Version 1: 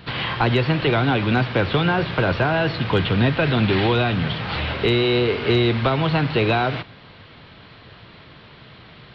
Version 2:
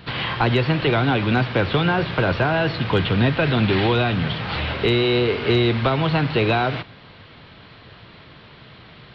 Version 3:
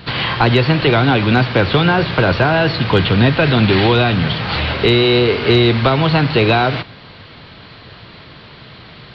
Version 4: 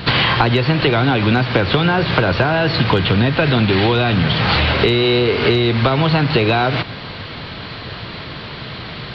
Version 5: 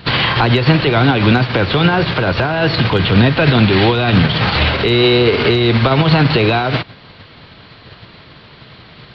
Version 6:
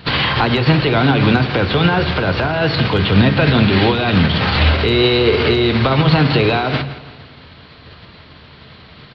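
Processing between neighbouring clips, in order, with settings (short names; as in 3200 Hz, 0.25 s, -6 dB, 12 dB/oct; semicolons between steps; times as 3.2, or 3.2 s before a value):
nothing audible
bell 4500 Hz +5.5 dB 0.36 oct; gain +6 dB
compressor 10:1, threshold -20 dBFS, peak gain reduction 13 dB; gain +8.5 dB
maximiser +10 dB; upward expander 2.5:1, over -20 dBFS
feedback echo 0.166 s, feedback 45%, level -14.5 dB; on a send at -12.5 dB: reverb RT60 0.45 s, pre-delay 3 ms; on the sum: gain -2 dB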